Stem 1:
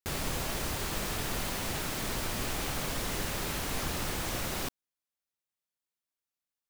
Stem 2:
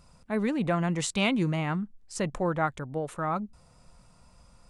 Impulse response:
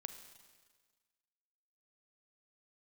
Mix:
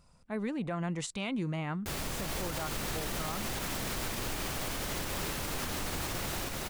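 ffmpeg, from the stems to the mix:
-filter_complex "[0:a]adelay=1800,volume=1.06,asplit=2[s0][s1];[s1]volume=0.708[s2];[1:a]volume=0.501[s3];[s2]aecho=0:1:294:1[s4];[s0][s3][s4]amix=inputs=3:normalize=0,alimiter=level_in=1.19:limit=0.0631:level=0:latency=1:release=80,volume=0.841"

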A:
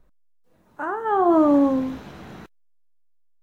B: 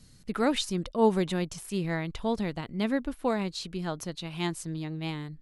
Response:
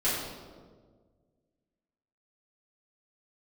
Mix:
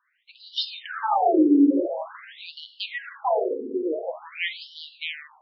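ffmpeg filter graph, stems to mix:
-filter_complex "[0:a]asubboost=boost=10.5:cutoff=150,volume=0.596,asplit=2[s0][s1];[s1]volume=0.237[s2];[1:a]bandreject=f=62.69:t=h:w=4,bandreject=f=125.38:t=h:w=4,bandreject=f=188.07:t=h:w=4,bandreject=f=250.76:t=h:w=4,bandreject=f=313.45:t=h:w=4,bandreject=f=376.14:t=h:w=4,bandreject=f=438.83:t=h:w=4,bandreject=f=501.52:t=h:w=4,bandreject=f=564.21:t=h:w=4,bandreject=f=626.9:t=h:w=4,bandreject=f=689.59:t=h:w=4,bandreject=f=752.28:t=h:w=4,bandreject=f=814.97:t=h:w=4,bandreject=f=877.66:t=h:w=4,bandreject=f=940.35:t=h:w=4,bandreject=f=1003.04:t=h:w=4,bandreject=f=1065.73:t=h:w=4,bandreject=f=1128.42:t=h:w=4,bandreject=f=1191.11:t=h:w=4,bandreject=f=1253.8:t=h:w=4,bandreject=f=1316.49:t=h:w=4,bandreject=f=1379.18:t=h:w=4,bandreject=f=1441.87:t=h:w=4,bandreject=f=1504.56:t=h:w=4,bandreject=f=1567.25:t=h:w=4,bandreject=f=1629.94:t=h:w=4,volume=1.19,asplit=2[s3][s4];[s4]volume=0.158[s5];[2:a]atrim=start_sample=2205[s6];[s2][s5]amix=inputs=2:normalize=0[s7];[s7][s6]afir=irnorm=-1:irlink=0[s8];[s0][s3][s8]amix=inputs=3:normalize=0,dynaudnorm=f=250:g=5:m=3.98,asoftclip=type=tanh:threshold=0.335,afftfilt=real='re*between(b*sr/1024,340*pow(4100/340,0.5+0.5*sin(2*PI*0.47*pts/sr))/1.41,340*pow(4100/340,0.5+0.5*sin(2*PI*0.47*pts/sr))*1.41)':imag='im*between(b*sr/1024,340*pow(4100/340,0.5+0.5*sin(2*PI*0.47*pts/sr))/1.41,340*pow(4100/340,0.5+0.5*sin(2*PI*0.47*pts/sr))*1.41)':win_size=1024:overlap=0.75"

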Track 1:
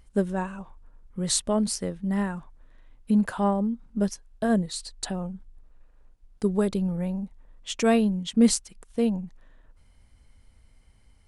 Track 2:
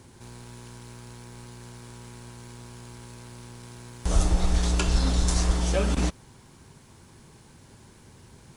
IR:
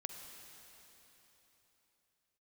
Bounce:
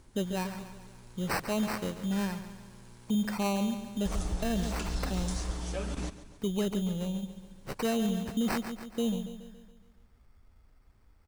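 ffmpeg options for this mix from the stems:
-filter_complex "[0:a]acrusher=samples=13:mix=1:aa=0.000001,volume=0.596,asplit=2[s0][s1];[s1]volume=0.251[s2];[1:a]volume=0.299,asplit=2[s3][s4];[s4]volume=0.188[s5];[s2][s5]amix=inputs=2:normalize=0,aecho=0:1:140|280|420|560|700|840|980|1120:1|0.52|0.27|0.141|0.0731|0.038|0.0198|0.0103[s6];[s0][s3][s6]amix=inputs=3:normalize=0,alimiter=limit=0.0794:level=0:latency=1:release=14"

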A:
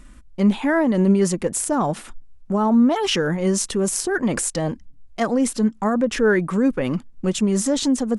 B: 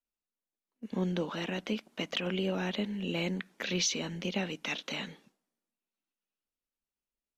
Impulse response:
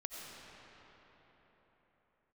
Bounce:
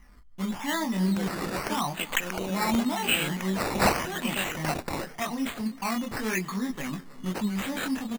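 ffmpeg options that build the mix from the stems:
-filter_complex "[0:a]lowpass=f=2600:p=1,aecho=1:1:1:0.7,flanger=delay=19.5:depth=7.1:speed=0.44,volume=0.631,asplit=3[s0][s1][s2];[s1]volume=0.133[s3];[s2]volume=0.119[s4];[1:a]dynaudnorm=f=660:g=3:m=2.99,volume=0.447,asplit=2[s5][s6];[s6]volume=0.0794[s7];[2:a]atrim=start_sample=2205[s8];[s3][s8]afir=irnorm=-1:irlink=0[s9];[s4][s7]amix=inputs=2:normalize=0,aecho=0:1:313|626|939|1252|1565|1878:1|0.45|0.202|0.0911|0.041|0.0185[s10];[s0][s5][s9][s10]amix=inputs=4:normalize=0,tiltshelf=f=1300:g=-7,acrusher=samples=11:mix=1:aa=0.000001:lfo=1:lforange=6.6:lforate=0.87"

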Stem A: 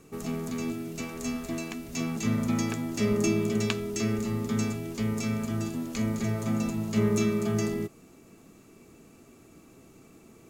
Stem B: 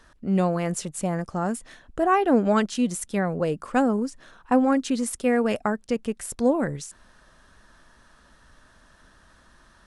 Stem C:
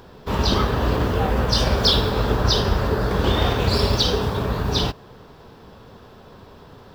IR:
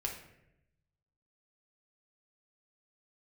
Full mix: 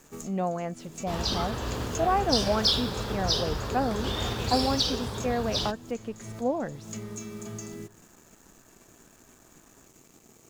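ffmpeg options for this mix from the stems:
-filter_complex "[0:a]equalizer=f=6800:t=o:w=0.5:g=13.5,acompressor=threshold=0.0282:ratio=12,acrusher=bits=7:mix=0:aa=0.5,volume=0.596,asplit=2[s0][s1];[s1]volume=0.168[s2];[1:a]lowpass=4400,equalizer=f=720:t=o:w=0.68:g=8,volume=0.355,asplit=2[s3][s4];[2:a]equalizer=f=7800:w=0.46:g=10.5,adelay=800,volume=0.224,asplit=2[s5][s6];[s6]volume=0.15[s7];[s4]apad=whole_len=463023[s8];[s0][s8]sidechaincompress=threshold=0.00316:ratio=8:attack=38:release=151[s9];[3:a]atrim=start_sample=2205[s10];[s2][s7]amix=inputs=2:normalize=0[s11];[s11][s10]afir=irnorm=-1:irlink=0[s12];[s9][s3][s5][s12]amix=inputs=4:normalize=0"

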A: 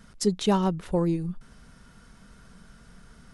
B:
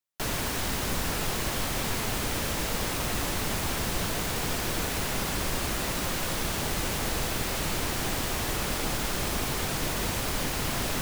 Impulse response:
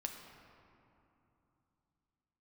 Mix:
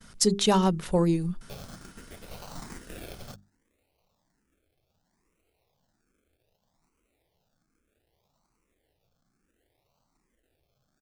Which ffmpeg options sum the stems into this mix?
-filter_complex "[0:a]agate=range=0.0224:threshold=0.00316:ratio=3:detection=peak,volume=1.19,asplit=2[s0][s1];[1:a]acrusher=samples=36:mix=1:aa=0.000001:lfo=1:lforange=21.6:lforate=0.66,asplit=2[s2][s3];[s3]afreqshift=1.2[s4];[s2][s4]amix=inputs=2:normalize=1,adelay=1300,volume=0.422[s5];[s1]apad=whole_len=542957[s6];[s5][s6]sidechaingate=range=0.0178:threshold=0.00398:ratio=16:detection=peak[s7];[s0][s7]amix=inputs=2:normalize=0,highshelf=f=3000:g=7.5,bandreject=f=50:t=h:w=6,bandreject=f=100:t=h:w=6,bandreject=f=150:t=h:w=6,bandreject=f=200:t=h:w=6,bandreject=f=250:t=h:w=6,bandreject=f=300:t=h:w=6,bandreject=f=350:t=h:w=6,bandreject=f=400:t=h:w=6"

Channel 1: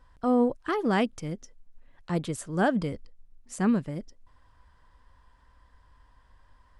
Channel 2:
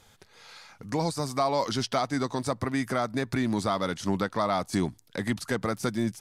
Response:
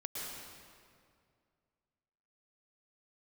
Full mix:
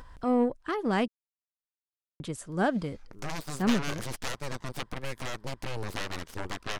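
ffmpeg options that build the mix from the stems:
-filter_complex "[0:a]volume=0.794,asplit=3[s0][s1][s2];[s0]atrim=end=1.08,asetpts=PTS-STARTPTS,afade=t=out:st=1.076:d=0.004:c=hsin[s3];[s1]atrim=start=1.08:end=2.2,asetpts=PTS-STARTPTS,volume=0[s4];[s2]atrim=start=2.2,asetpts=PTS-STARTPTS,afade=t=in:d=0.004:c=hsin[s5];[s3][s4][s5]concat=n=3:v=0:a=1[s6];[1:a]aeval=exprs='0.224*(cos(1*acos(clip(val(0)/0.224,-1,1)))-cos(1*PI/2))+0.112*(cos(3*acos(clip(val(0)/0.224,-1,1)))-cos(3*PI/2))+0.0141*(cos(5*acos(clip(val(0)/0.224,-1,1)))-cos(5*PI/2))+0.0282*(cos(8*acos(clip(val(0)/0.224,-1,1)))-cos(8*PI/2))':c=same,adelay=2300,volume=0.944[s7];[s6][s7]amix=inputs=2:normalize=0,acompressor=mode=upward:threshold=0.02:ratio=2.5,aeval=exprs='0.224*(cos(1*acos(clip(val(0)/0.224,-1,1)))-cos(1*PI/2))+0.00708*(cos(7*acos(clip(val(0)/0.224,-1,1)))-cos(7*PI/2))':c=same"

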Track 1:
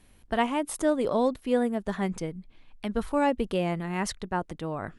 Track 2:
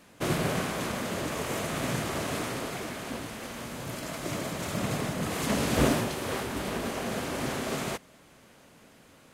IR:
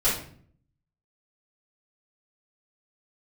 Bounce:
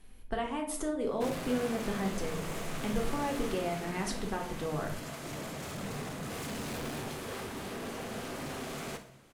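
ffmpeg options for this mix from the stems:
-filter_complex "[0:a]acompressor=threshold=0.0355:ratio=6,volume=0.562,asplit=2[s0][s1];[s1]volume=0.251[s2];[1:a]volume=35.5,asoftclip=hard,volume=0.0282,adelay=1000,volume=0.447,asplit=3[s3][s4][s5];[s4]volume=0.112[s6];[s5]volume=0.211[s7];[2:a]atrim=start_sample=2205[s8];[s2][s6]amix=inputs=2:normalize=0[s9];[s9][s8]afir=irnorm=-1:irlink=0[s10];[s7]aecho=0:1:61|122|183|244|305|366|427|488|549:1|0.57|0.325|0.185|0.106|0.0602|0.0343|0.0195|0.0111[s11];[s0][s3][s10][s11]amix=inputs=4:normalize=0"

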